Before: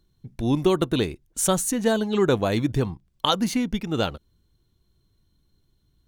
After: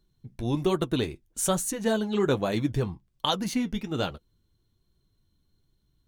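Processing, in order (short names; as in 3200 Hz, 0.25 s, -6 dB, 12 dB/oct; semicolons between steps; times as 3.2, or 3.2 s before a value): flange 1.2 Hz, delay 4.6 ms, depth 6.5 ms, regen -51%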